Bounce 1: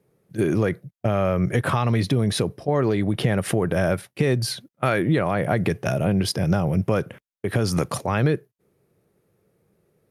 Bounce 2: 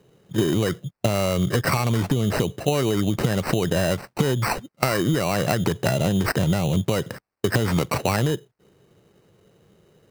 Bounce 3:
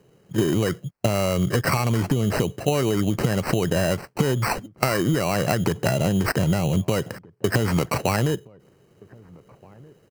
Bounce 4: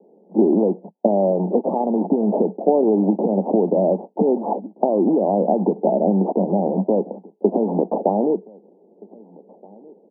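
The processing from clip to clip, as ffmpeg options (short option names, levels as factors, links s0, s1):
-af "acompressor=threshold=0.0501:ratio=10,acrusher=samples=13:mix=1:aa=0.000001,volume=2.66"
-filter_complex "[0:a]bandreject=f=3600:w=5.8,asplit=2[s0][s1];[s1]adelay=1574,volume=0.0562,highshelf=f=4000:g=-35.4[s2];[s0][s2]amix=inputs=2:normalize=0"
-af "acrusher=bits=2:mode=log:mix=0:aa=0.000001,asuperpass=centerf=410:order=20:qfactor=0.59,volume=2.11"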